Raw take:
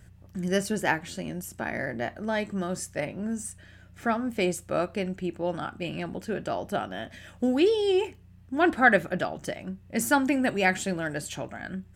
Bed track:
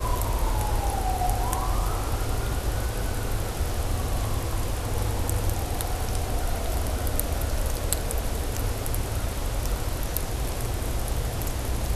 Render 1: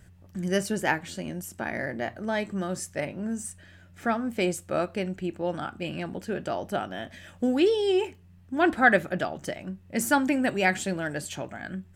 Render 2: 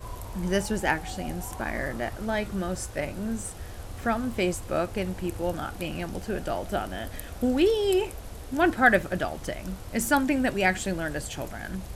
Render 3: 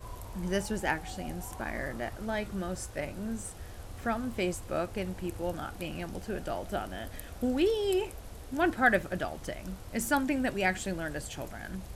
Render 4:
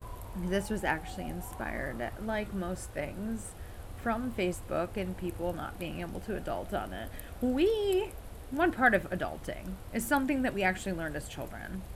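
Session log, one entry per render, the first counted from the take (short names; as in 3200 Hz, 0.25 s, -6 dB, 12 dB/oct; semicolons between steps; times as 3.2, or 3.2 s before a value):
de-hum 60 Hz, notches 2
add bed track -12.5 dB
gain -5 dB
gate with hold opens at -40 dBFS; bell 5900 Hz -7 dB 1 oct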